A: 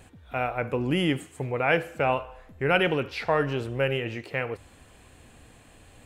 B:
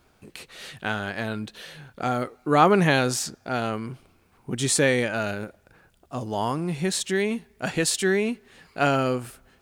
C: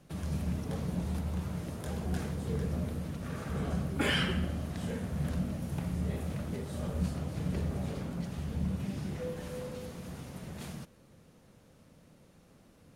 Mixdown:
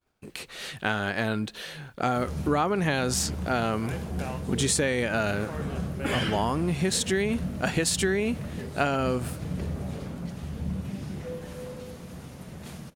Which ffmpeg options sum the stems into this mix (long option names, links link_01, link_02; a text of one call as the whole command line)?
ffmpeg -i stem1.wav -i stem2.wav -i stem3.wav -filter_complex "[0:a]adelay=2200,volume=-13.5dB[link_01];[1:a]agate=range=-33dB:threshold=-49dB:ratio=3:detection=peak,volume=3dB,asplit=2[link_02][link_03];[2:a]adelay=2050,volume=1.5dB[link_04];[link_03]apad=whole_len=364140[link_05];[link_01][link_05]sidechaincompress=threshold=-29dB:ratio=8:attack=16:release=493[link_06];[link_06][link_02][link_04]amix=inputs=3:normalize=0,acompressor=threshold=-21dB:ratio=12" out.wav